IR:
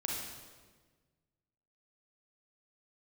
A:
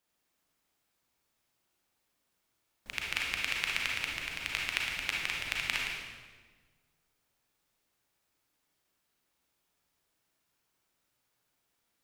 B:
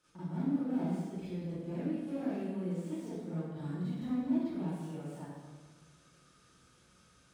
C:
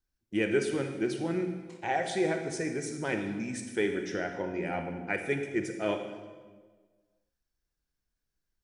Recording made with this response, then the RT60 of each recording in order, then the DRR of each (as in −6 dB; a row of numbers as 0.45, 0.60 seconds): A; 1.4, 1.4, 1.5 seconds; −2.5, −12.5, 5.5 decibels